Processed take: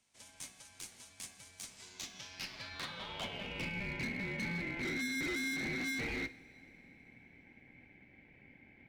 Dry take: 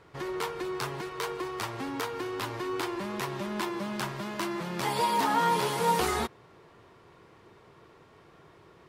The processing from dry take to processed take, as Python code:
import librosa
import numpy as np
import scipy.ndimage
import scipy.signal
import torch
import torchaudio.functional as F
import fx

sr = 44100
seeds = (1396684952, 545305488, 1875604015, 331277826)

p1 = fx.peak_eq(x, sr, hz=950.0, db=4.5, octaves=0.44)
p2 = fx.rider(p1, sr, range_db=4, speed_s=0.5)
p3 = p1 + F.gain(torch.from_numpy(p2), -1.5).numpy()
p4 = fx.filter_sweep_bandpass(p3, sr, from_hz=7700.0, to_hz=950.0, start_s=1.59, end_s=4.1, q=3.6)
p5 = np.clip(10.0 ** (33.0 / 20.0) * p4, -1.0, 1.0) / 10.0 ** (33.0 / 20.0)
p6 = p5 * np.sin(2.0 * np.pi * 1200.0 * np.arange(len(p5)) / sr)
y = fx.rev_double_slope(p6, sr, seeds[0], early_s=0.49, late_s=4.0, knee_db=-18, drr_db=12.0)